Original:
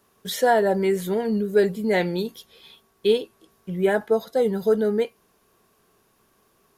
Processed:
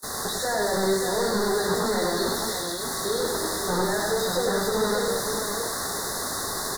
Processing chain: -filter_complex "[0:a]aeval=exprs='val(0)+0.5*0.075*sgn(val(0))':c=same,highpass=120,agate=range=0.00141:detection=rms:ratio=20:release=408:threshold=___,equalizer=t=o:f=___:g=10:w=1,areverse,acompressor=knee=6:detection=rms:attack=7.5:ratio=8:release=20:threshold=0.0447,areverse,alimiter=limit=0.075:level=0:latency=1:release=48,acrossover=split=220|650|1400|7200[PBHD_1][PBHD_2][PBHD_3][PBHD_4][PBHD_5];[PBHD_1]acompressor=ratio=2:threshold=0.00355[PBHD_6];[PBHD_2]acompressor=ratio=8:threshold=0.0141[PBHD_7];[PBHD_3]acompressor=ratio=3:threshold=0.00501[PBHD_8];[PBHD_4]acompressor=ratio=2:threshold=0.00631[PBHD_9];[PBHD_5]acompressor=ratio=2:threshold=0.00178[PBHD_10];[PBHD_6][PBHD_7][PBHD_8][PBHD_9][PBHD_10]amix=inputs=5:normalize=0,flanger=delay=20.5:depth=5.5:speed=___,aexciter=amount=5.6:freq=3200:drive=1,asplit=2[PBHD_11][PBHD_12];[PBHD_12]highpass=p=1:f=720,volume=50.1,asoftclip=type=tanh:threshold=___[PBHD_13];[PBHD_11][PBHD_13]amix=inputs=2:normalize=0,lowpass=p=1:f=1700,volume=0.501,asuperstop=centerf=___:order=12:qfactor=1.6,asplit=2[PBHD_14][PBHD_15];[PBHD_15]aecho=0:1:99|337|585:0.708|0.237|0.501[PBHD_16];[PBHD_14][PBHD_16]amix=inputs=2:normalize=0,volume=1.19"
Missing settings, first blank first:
0.0501, 10000, 0.48, 0.141, 2700